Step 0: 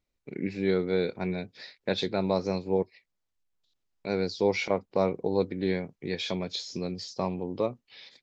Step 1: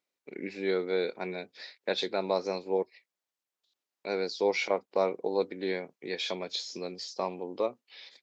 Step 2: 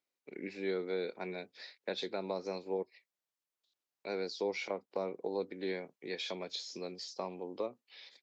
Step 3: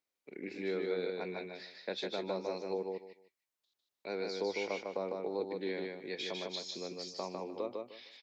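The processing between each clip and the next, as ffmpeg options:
-af "highpass=370"
-filter_complex "[0:a]acrossover=split=360[s0][s1];[s1]acompressor=threshold=0.0282:ratio=6[s2];[s0][s2]amix=inputs=2:normalize=0,volume=0.596"
-af "aecho=1:1:152|304|456:0.668|0.147|0.0323,volume=0.891"

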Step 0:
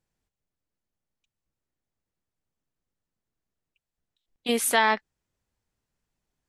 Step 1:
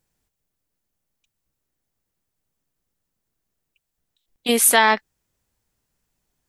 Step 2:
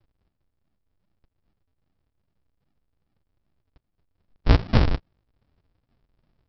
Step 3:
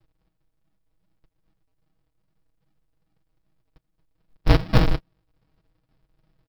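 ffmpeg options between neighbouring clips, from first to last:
-af "highshelf=f=8000:g=9.5,volume=1.88"
-af "acompressor=threshold=0.1:ratio=6,aresample=11025,acrusher=samples=42:mix=1:aa=0.000001:lfo=1:lforange=42:lforate=2.5,aresample=44100,volume=2.51"
-af "aecho=1:1:6.3:0.74,acrusher=bits=8:mode=log:mix=0:aa=0.000001"

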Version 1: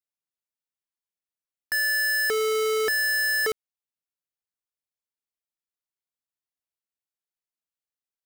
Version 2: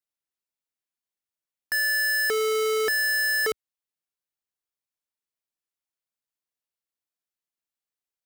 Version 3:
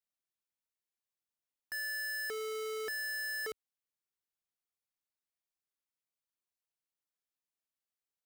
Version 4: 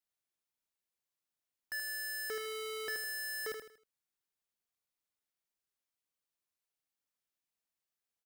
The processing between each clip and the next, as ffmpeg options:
-af "equalizer=f=71:t=o:w=1.4:g=-3"
-af "alimiter=level_in=2.66:limit=0.0631:level=0:latency=1,volume=0.376,volume=0.562"
-af "aecho=1:1:79|158|237|316:0.501|0.175|0.0614|0.0215"

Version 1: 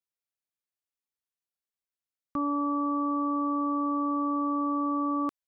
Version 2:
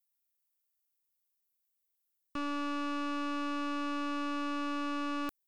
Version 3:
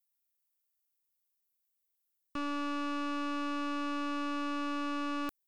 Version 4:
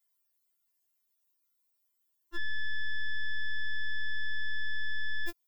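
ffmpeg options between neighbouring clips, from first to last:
-af "aeval=exprs='(tanh(44.7*val(0)+0.65)-tanh(0.65))/44.7':c=same,aemphasis=mode=production:type=50fm"
-af anull
-af "afftfilt=real='re*4*eq(mod(b,16),0)':imag='im*4*eq(mod(b,16),0)':win_size=2048:overlap=0.75,volume=2.11"

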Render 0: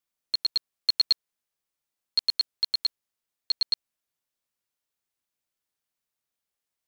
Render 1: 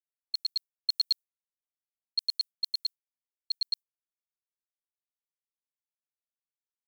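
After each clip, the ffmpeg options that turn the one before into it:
-af "agate=range=0.0224:threshold=0.0447:ratio=3:detection=peak,aderivative"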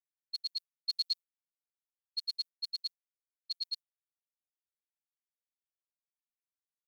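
-af "agate=range=0.0224:threshold=0.0224:ratio=3:detection=peak,afftfilt=real='hypot(re,im)*cos(PI*b)':imag='0':win_size=1024:overlap=0.75,volume=0.841"

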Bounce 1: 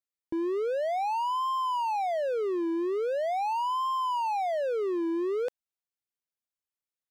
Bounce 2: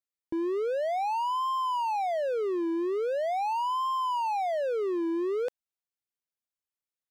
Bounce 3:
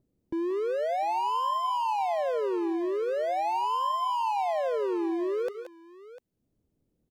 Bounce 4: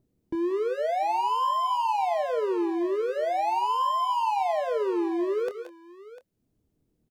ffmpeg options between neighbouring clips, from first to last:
-af anull
-filter_complex "[0:a]acrossover=split=380[s0][s1];[s0]acompressor=mode=upward:threshold=0.00501:ratio=2.5[s2];[s1]aecho=1:1:168|181|699:0.211|0.398|0.188[s3];[s2][s3]amix=inputs=2:normalize=0"
-filter_complex "[0:a]bandreject=f=540:w=12,asplit=2[s0][s1];[s1]adelay=26,volume=0.282[s2];[s0][s2]amix=inputs=2:normalize=0,volume=1.26"

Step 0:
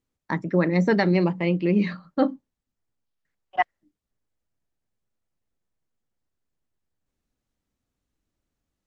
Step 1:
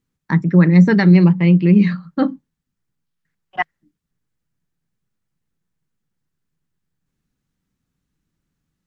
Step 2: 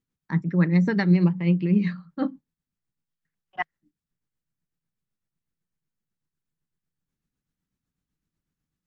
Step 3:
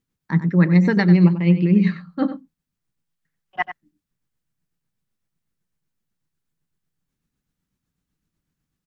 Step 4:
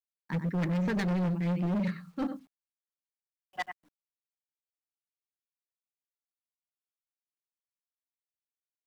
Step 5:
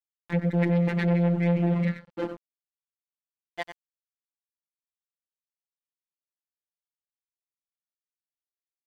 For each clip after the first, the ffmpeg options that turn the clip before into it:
-af "equalizer=f=160:t=o:w=0.67:g=12,equalizer=f=630:t=o:w=0.67:g=-7,equalizer=f=1600:t=o:w=0.67:g=3,volume=1.5"
-af "tremolo=f=8:d=0.49,volume=0.447"
-filter_complex "[0:a]asplit=2[s0][s1];[s1]adelay=93.29,volume=0.282,highshelf=f=4000:g=-2.1[s2];[s0][s2]amix=inputs=2:normalize=0,volume=1.78"
-af "acrusher=bits=9:mix=0:aa=0.000001,asoftclip=type=hard:threshold=0.112,volume=0.398"
-af "highpass=f=120:w=0.5412,highpass=f=120:w=1.3066,equalizer=f=300:t=q:w=4:g=5,equalizer=f=490:t=q:w=4:g=5,equalizer=f=1200:t=q:w=4:g=-8,equalizer=f=2100:t=q:w=4:g=6,lowpass=f=3700:w=0.5412,lowpass=f=3700:w=1.3066,afftfilt=real='hypot(re,im)*cos(PI*b)':imag='0':win_size=1024:overlap=0.75,aeval=exprs='sgn(val(0))*max(abs(val(0))-0.00422,0)':c=same,volume=2.24"

